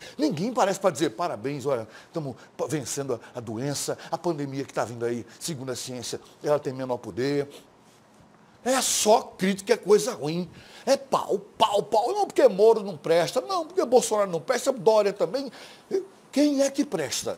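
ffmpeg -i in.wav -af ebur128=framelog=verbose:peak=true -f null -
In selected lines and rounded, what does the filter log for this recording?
Integrated loudness:
  I:         -25.6 LUFS
  Threshold: -35.9 LUFS
Loudness range:
  LRA:         8.0 LU
  Threshold: -45.9 LUFS
  LRA low:   -30.9 LUFS
  LRA high:  -22.9 LUFS
True peak:
  Peak:       -4.1 dBFS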